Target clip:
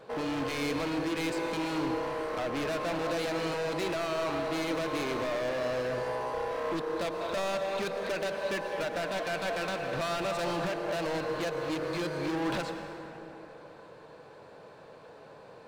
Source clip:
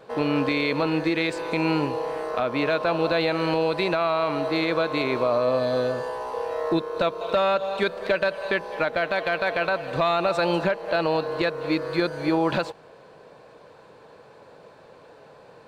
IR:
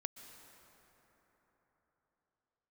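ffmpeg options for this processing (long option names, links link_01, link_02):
-filter_complex "[0:a]asoftclip=type=hard:threshold=-28dB[link_01];[1:a]atrim=start_sample=2205,asetrate=52920,aresample=44100[link_02];[link_01][link_02]afir=irnorm=-1:irlink=0,volume=2.5dB"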